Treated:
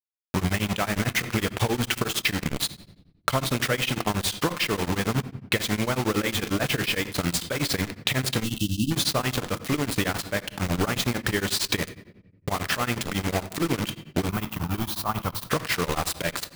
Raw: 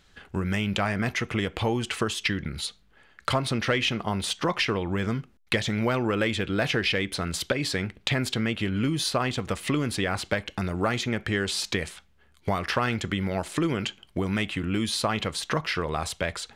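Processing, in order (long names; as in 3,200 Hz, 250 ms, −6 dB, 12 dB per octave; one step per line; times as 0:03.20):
bit reduction 5 bits
0:08.44–0:08.91: time-frequency box erased 340–2,600 Hz
0:14.29–0:15.45: octave-band graphic EQ 250/500/1,000/2,000/4,000/8,000 Hz −6/−10/+5/−11/−7/−11 dB
downward compressor, threshold −26 dBFS, peak gain reduction 7.5 dB
rectangular room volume 380 cubic metres, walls mixed, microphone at 0.39 metres
tremolo along a rectified sine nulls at 11 Hz
level +7 dB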